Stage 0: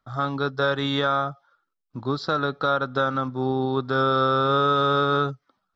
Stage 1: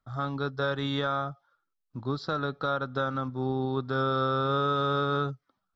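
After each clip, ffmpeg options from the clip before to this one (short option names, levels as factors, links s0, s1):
-af "lowshelf=f=170:g=7,volume=0.447"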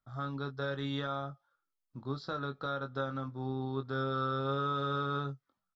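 -filter_complex "[0:a]asplit=2[s0][s1];[s1]adelay=22,volume=0.398[s2];[s0][s2]amix=inputs=2:normalize=0,volume=0.422"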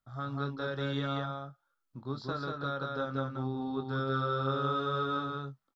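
-af "aecho=1:1:187:0.708"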